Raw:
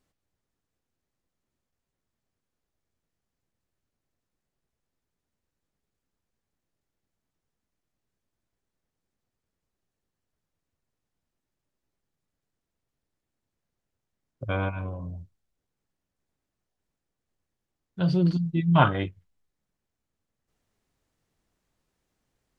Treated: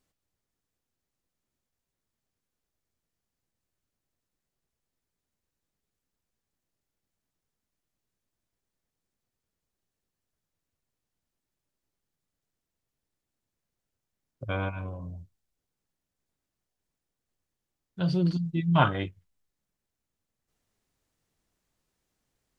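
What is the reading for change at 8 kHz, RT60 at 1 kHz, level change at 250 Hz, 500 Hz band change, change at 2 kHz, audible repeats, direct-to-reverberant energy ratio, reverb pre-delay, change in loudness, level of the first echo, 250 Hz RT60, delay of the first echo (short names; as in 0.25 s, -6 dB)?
n/a, none, -3.0 dB, -3.0 dB, -2.0 dB, none, none, none, -3.0 dB, none, none, none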